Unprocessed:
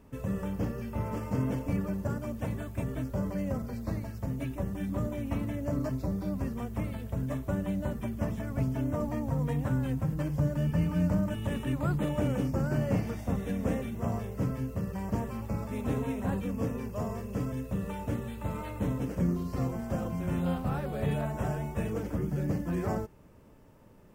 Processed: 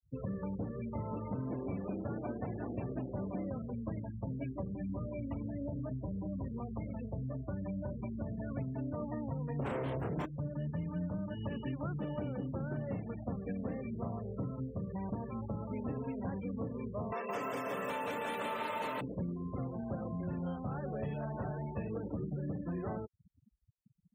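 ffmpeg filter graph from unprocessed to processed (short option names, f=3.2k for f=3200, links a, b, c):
-filter_complex "[0:a]asettb=1/sr,asplit=3[a][b][c];[a]atrim=end=1.264[d];[b]atrim=start=1.26:end=3.5,asetpts=PTS-STARTPTS,afade=t=in:d=0.004:c=qsin,afade=t=out:st=2.236:d=0.004:c=qsin,asuperstop=centerf=3800:order=4:qfactor=4.4,asplit=6[e][f][g][h][i][j];[f]adelay=194,afreqshift=130,volume=-5.5dB[k];[g]adelay=388,afreqshift=260,volume=-13dB[l];[h]adelay=582,afreqshift=390,volume=-20.6dB[m];[i]adelay=776,afreqshift=520,volume=-28.1dB[n];[j]adelay=970,afreqshift=650,volume=-35.6dB[o];[e][k][l][m][n][o]amix=inputs=6:normalize=0,atrim=end_sample=98784[p];[c]atrim=start=3.496[q];[d][p]acrossfade=d=0.004:c1=hsin:c2=qsin[r];[r][q]acrossfade=d=0.004:c1=qsin:c2=hsin,asettb=1/sr,asplit=3[s][t][u];[s]atrim=end=4.754[v];[t]atrim=start=4.75:end=8.51,asetpts=PTS-STARTPTS,afade=t=in:d=0.004:c=qsin,afade=t=out:st=3.756:d=0.004:c=qsin,acrossover=split=120|3000[w][x][y];[x]acompressor=threshold=-35dB:ratio=4:attack=3.2:release=140:knee=2.83:detection=peak[z];[w][z][y]amix=inputs=3:normalize=0,asplit=2[aa][ab];[ab]adelay=32,volume=-10.5dB[ac];[aa][ac]amix=inputs=2:normalize=0,atrim=end_sample=165816[ad];[u]atrim=start=8.506[ae];[v][ad]acrossfade=d=0.004:c1=hsin:c2=qsin[af];[af][ae]acrossfade=d=0.004:c1=qsin:c2=hsin,asettb=1/sr,asplit=3[ag][ah][ai];[ag]atrim=end=9.594[aj];[ah]atrim=start=9.59:end=10.26,asetpts=PTS-STARTPTS,afade=t=in:d=0.004:c=qsin,afade=t=out:st=0.666:d=0.004:c=qsin,bandreject=f=50:t=h:w=6,bandreject=f=100:t=h:w=6,bandreject=f=150:t=h:w=6,bandreject=f=200:t=h:w=6,aeval=exprs='0.112*sin(PI/2*3.98*val(0)/0.112)':c=same,asplit=2[ak][al];[al]adelay=29,volume=-2.5dB[am];[ak][am]amix=inputs=2:normalize=0,atrim=end_sample=29547[an];[ai]atrim=start=10.256[ao];[aj][an]acrossfade=d=0.004:c1=hsin:c2=qsin[ap];[ap][ao]acrossfade=d=0.004:c1=qsin:c2=hsin,asettb=1/sr,asplit=3[aq][ar][as];[aq]atrim=end=17.124[at];[ar]atrim=start=17.12:end=19.01,asetpts=PTS-STARTPTS,afade=t=in:d=0.004:c=qsin,afade=t=out:st=1.886:d=0.004:c=qsin,highpass=680,aeval=exprs='0.0447*sin(PI/2*3.55*val(0)/0.0447)':c=same,aecho=1:1:170|314.5|437.3|541.7|630.5|705.9:0.794|0.631|0.501|0.398|0.316|0.251,atrim=end_sample=83349[au];[as]atrim=start=19.006[av];[at][au]acrossfade=d=0.004:c1=hsin:c2=qsin[aw];[aw][av]acrossfade=d=0.004:c1=qsin:c2=hsin,afftfilt=real='re*gte(hypot(re,im),0.0141)':imag='im*gte(hypot(re,im),0.0141)':win_size=1024:overlap=0.75,highpass=85,acompressor=threshold=-35dB:ratio=6"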